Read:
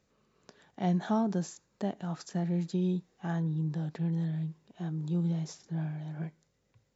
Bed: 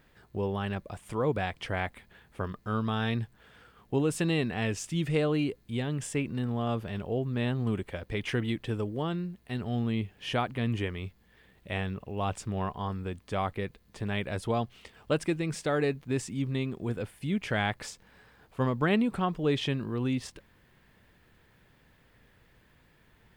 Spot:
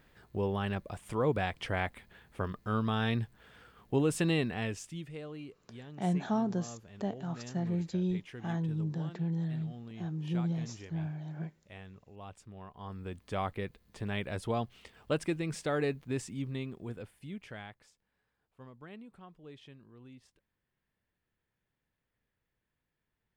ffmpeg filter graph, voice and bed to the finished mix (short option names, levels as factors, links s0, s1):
-filter_complex "[0:a]adelay=5200,volume=0.794[s0];[1:a]volume=3.98,afade=t=out:st=4.31:d=0.79:silence=0.16788,afade=t=in:st=12.7:d=0.52:silence=0.223872,afade=t=out:st=15.94:d=1.9:silence=0.1[s1];[s0][s1]amix=inputs=2:normalize=0"